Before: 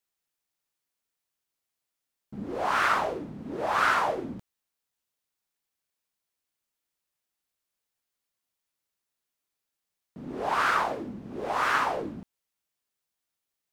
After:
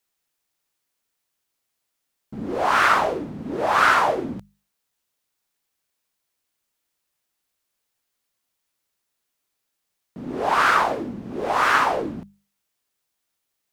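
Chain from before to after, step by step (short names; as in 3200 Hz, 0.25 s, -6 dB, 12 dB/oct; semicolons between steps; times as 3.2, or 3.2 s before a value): notches 50/100/150/200 Hz; gain +7 dB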